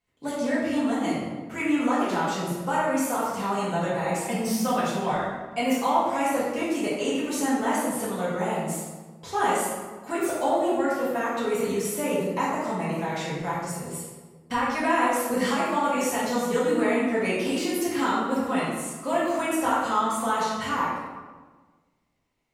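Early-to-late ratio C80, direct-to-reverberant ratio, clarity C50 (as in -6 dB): 2.0 dB, -10.0 dB, -1.0 dB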